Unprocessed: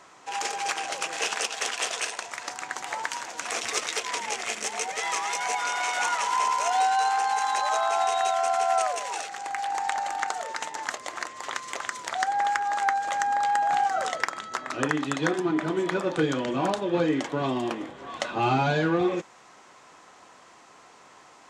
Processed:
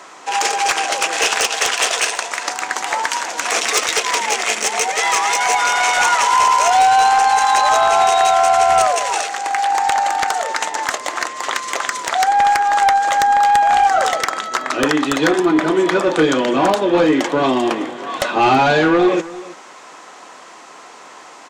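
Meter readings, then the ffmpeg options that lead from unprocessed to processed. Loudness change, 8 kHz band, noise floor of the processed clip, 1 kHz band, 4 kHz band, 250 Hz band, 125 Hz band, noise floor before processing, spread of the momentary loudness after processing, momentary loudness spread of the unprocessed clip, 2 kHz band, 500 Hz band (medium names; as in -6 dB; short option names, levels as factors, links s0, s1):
+11.5 dB, +12.0 dB, -40 dBFS, +11.5 dB, +12.0 dB, +10.5 dB, +3.0 dB, -53 dBFS, 9 LU, 9 LU, +11.5 dB, +11.5 dB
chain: -af "highpass=240,aeval=exprs='0.422*sin(PI/2*2.82*val(0)/0.422)':c=same,aecho=1:1:328:0.126"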